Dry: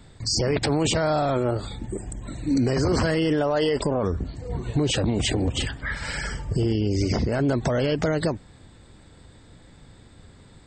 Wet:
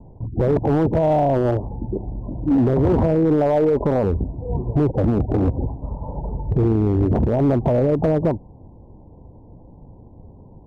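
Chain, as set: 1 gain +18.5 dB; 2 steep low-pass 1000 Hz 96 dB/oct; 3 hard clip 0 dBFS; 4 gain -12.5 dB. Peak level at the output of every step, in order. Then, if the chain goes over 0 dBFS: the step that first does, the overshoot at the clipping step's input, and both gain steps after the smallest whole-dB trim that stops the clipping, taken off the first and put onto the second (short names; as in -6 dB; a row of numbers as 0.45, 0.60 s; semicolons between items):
+5.5, +5.5, 0.0, -12.5 dBFS; step 1, 5.5 dB; step 1 +12.5 dB, step 4 -6.5 dB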